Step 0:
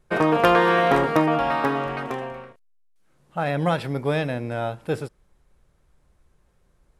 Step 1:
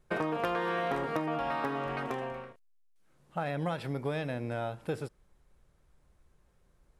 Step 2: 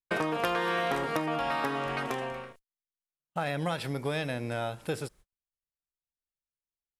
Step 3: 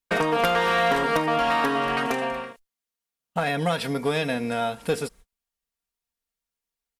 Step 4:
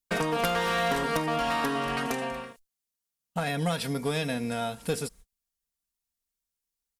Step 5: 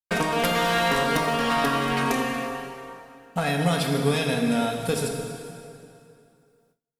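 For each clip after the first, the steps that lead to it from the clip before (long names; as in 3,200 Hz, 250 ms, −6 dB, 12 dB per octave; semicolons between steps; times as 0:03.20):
downward compressor 4 to 1, threshold −26 dBFS, peak gain reduction 12 dB; level −4 dB
noise gate −54 dBFS, range −42 dB; high-shelf EQ 2,500 Hz +10.5 dB; level +1 dB
comb filter 4.3 ms, depth 62%; asymmetric clip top −25 dBFS; level +6 dB
bass and treble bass +6 dB, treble +8 dB; level −6 dB
dense smooth reverb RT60 2.7 s, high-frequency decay 0.8×, DRR 2 dB; noise gate with hold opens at −59 dBFS; level +3.5 dB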